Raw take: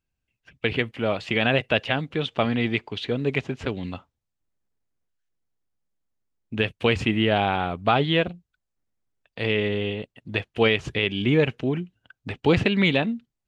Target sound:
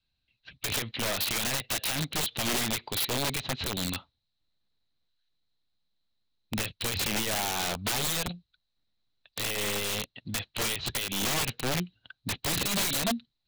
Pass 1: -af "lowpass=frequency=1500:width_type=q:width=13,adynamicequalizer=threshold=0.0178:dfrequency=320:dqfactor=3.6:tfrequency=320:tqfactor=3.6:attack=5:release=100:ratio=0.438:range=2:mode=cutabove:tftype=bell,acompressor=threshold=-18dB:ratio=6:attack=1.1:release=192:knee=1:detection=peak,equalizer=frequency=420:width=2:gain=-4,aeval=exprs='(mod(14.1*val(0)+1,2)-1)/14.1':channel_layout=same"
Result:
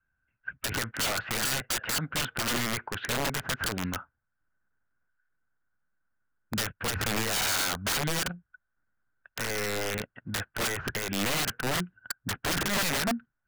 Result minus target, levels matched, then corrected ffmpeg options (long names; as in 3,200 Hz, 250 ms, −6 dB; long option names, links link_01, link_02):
2,000 Hz band +3.0 dB
-af "lowpass=frequency=4000:width_type=q:width=13,adynamicequalizer=threshold=0.0178:dfrequency=320:dqfactor=3.6:tfrequency=320:tqfactor=3.6:attack=5:release=100:ratio=0.438:range=2:mode=cutabove:tftype=bell,acompressor=threshold=-18dB:ratio=6:attack=1.1:release=192:knee=1:detection=peak,equalizer=frequency=420:width=2:gain=-4,aeval=exprs='(mod(14.1*val(0)+1,2)-1)/14.1':channel_layout=same"